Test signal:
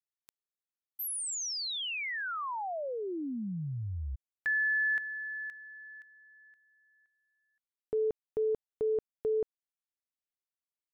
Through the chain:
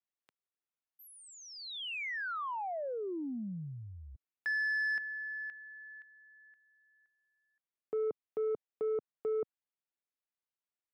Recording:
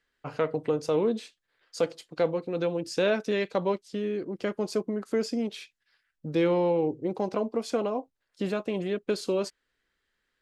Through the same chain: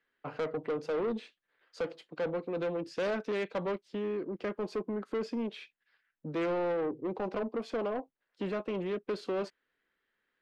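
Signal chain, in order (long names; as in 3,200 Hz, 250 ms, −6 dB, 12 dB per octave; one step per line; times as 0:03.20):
three-way crossover with the lows and the highs turned down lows −13 dB, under 150 Hz, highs −19 dB, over 3,500 Hz
soft clipping −27 dBFS
level −1 dB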